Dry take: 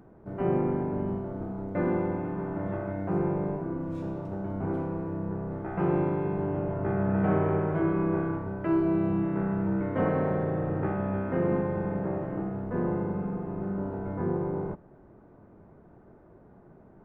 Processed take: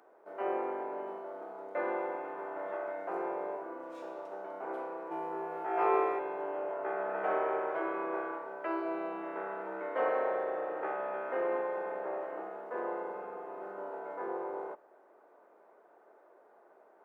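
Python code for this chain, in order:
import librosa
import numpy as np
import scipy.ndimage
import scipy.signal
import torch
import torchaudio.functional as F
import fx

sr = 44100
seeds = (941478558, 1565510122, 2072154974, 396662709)

y = scipy.signal.sosfilt(scipy.signal.butter(4, 480.0, 'highpass', fs=sr, output='sos'), x)
y = fx.room_flutter(y, sr, wall_m=3.1, rt60_s=1.1, at=(5.1, 6.18), fade=0.02)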